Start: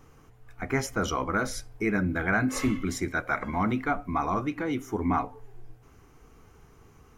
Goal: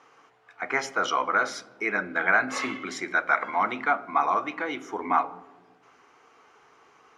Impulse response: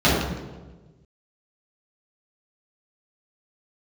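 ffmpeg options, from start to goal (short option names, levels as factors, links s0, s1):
-filter_complex "[0:a]highpass=650,lowpass=4300,asplit=2[s0][s1];[1:a]atrim=start_sample=2205,lowshelf=f=140:g=8[s2];[s1][s2]afir=irnorm=-1:irlink=0,volume=0.0126[s3];[s0][s3]amix=inputs=2:normalize=0,volume=2"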